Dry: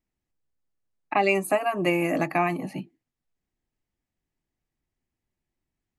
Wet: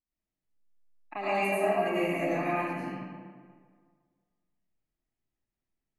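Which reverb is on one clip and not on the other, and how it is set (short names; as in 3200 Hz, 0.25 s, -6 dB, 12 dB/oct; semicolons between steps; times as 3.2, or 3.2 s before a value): digital reverb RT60 1.8 s, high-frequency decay 0.6×, pre-delay 60 ms, DRR -10 dB; gain -15 dB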